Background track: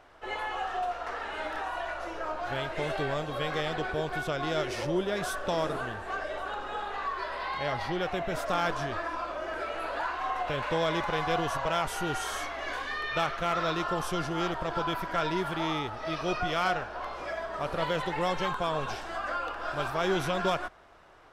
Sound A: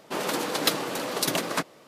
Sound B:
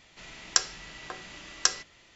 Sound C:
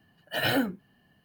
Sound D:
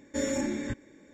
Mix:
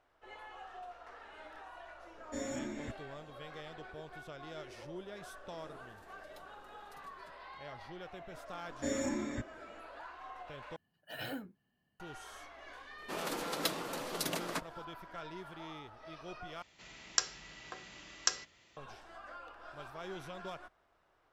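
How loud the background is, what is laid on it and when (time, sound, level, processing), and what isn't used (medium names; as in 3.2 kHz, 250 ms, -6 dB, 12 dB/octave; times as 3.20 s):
background track -16.5 dB
2.18 s: add D -10 dB
5.69 s: add A -17 dB + amplifier tone stack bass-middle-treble 10-0-1
8.68 s: add D -5.5 dB
10.76 s: replace with C -16 dB
12.98 s: add A -10.5 dB
16.62 s: replace with B -7 dB + high-pass 40 Hz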